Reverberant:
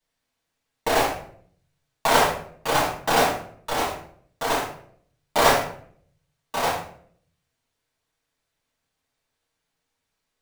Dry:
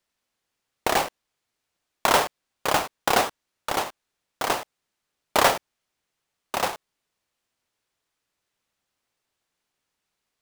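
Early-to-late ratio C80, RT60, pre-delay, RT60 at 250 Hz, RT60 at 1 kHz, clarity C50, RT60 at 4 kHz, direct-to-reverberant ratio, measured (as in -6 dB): 9.0 dB, 0.60 s, 4 ms, 0.80 s, 0.50 s, 4.5 dB, 0.40 s, -8.5 dB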